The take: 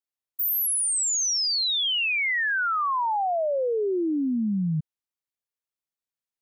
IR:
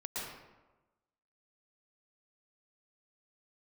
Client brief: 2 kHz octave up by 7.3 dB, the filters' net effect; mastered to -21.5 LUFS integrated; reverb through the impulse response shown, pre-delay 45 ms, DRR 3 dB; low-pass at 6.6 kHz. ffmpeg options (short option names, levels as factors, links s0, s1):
-filter_complex "[0:a]lowpass=6600,equalizer=f=2000:t=o:g=9,asplit=2[s0][s1];[1:a]atrim=start_sample=2205,adelay=45[s2];[s1][s2]afir=irnorm=-1:irlink=0,volume=0.562[s3];[s0][s3]amix=inputs=2:normalize=0,volume=0.75"